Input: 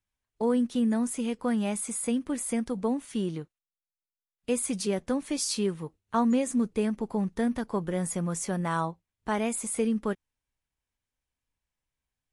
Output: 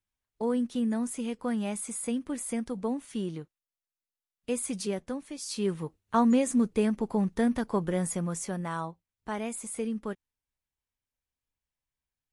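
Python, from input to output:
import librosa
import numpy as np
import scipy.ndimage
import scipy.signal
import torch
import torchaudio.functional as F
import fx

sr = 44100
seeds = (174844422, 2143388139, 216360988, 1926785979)

y = fx.gain(x, sr, db=fx.line((4.9, -3.0), (5.39, -10.5), (5.72, 1.5), (7.88, 1.5), (8.78, -5.5)))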